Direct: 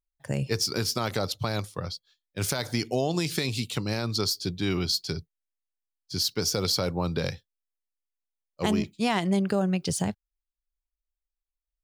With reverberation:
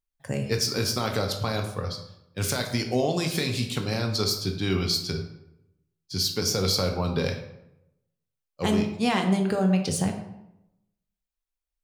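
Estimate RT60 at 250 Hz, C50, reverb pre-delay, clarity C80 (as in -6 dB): 0.95 s, 7.5 dB, 3 ms, 10.0 dB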